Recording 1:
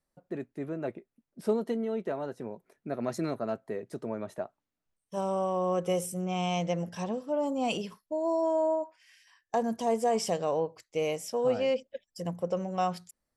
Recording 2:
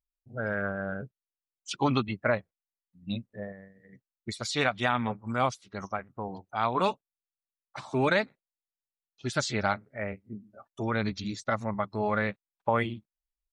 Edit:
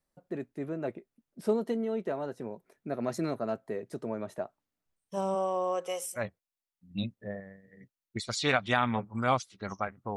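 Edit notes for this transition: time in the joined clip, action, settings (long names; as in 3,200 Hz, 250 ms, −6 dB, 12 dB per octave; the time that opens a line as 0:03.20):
recording 1
0:05.34–0:06.27: high-pass filter 210 Hz → 1,400 Hz
0:06.21: continue with recording 2 from 0:02.33, crossfade 0.12 s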